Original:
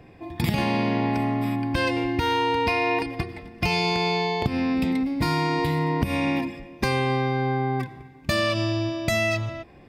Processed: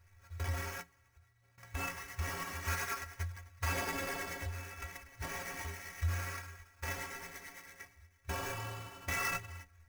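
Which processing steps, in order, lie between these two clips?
brick-wall band-stop 110–1,800 Hz
0:00.81–0:01.58: guitar amp tone stack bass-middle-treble 10-0-1
flanger 0.29 Hz, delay 9.5 ms, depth 7.3 ms, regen +28%
sample-rate reduction 4,000 Hz, jitter 20%
stiff-string resonator 82 Hz, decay 0.25 s, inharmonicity 0.03
level +2.5 dB

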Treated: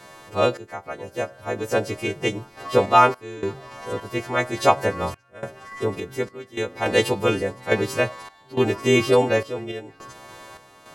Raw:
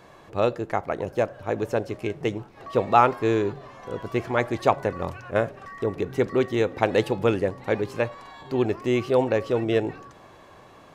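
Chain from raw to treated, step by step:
every partial snapped to a pitch grid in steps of 2 semitones
sample-and-hold tremolo, depth 95%
level +6 dB

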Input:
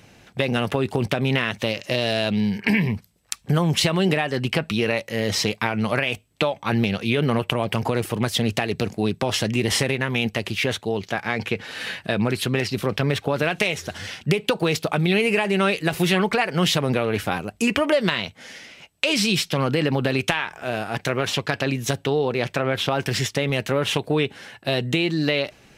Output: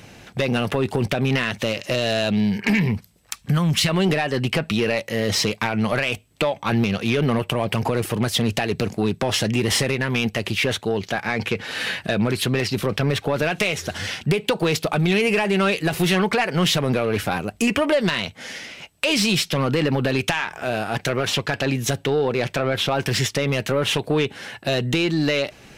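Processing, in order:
0:03.43–0:03.89: flat-topped bell 540 Hz −8.5 dB
in parallel at −1.5 dB: downward compressor, threshold −30 dBFS, peak gain reduction 14.5 dB
on the sum: soft clipping −12.5 dBFS, distortion −15 dB
level +1 dB

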